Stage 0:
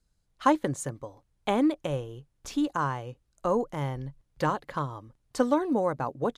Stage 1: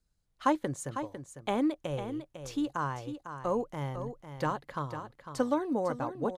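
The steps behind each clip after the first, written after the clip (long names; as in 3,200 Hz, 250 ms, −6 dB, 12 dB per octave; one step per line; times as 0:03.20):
single-tap delay 501 ms −9.5 dB
level −4.5 dB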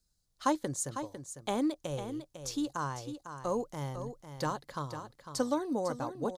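high shelf with overshoot 3,500 Hz +8 dB, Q 1.5
level −2 dB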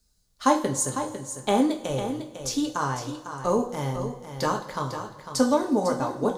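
coupled-rooms reverb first 0.33 s, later 2.3 s, from −19 dB, DRR 1.5 dB
level +7 dB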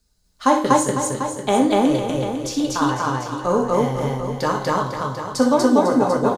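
bass and treble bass −1 dB, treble −5 dB
on a send: loudspeakers that aren't time-aligned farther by 21 metres −8 dB, 83 metres 0 dB
on the sum: level +4 dB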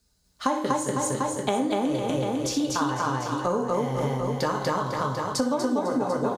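high-pass filter 48 Hz
downward compressor, threshold −22 dBFS, peak gain reduction 11.5 dB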